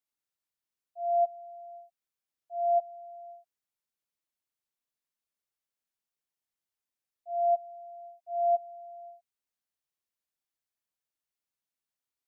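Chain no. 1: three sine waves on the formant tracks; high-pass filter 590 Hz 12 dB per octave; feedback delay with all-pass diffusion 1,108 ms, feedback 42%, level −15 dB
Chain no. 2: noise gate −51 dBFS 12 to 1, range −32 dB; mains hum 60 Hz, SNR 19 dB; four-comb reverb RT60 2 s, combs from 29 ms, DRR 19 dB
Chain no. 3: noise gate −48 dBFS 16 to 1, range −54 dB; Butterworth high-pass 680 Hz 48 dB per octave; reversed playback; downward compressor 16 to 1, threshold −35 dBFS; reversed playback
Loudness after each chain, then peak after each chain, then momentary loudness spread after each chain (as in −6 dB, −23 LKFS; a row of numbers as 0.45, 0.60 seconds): −34.5, −31.0, −43.0 LKFS; −18.0, −18.5, −29.5 dBFS; 23, 21, 14 LU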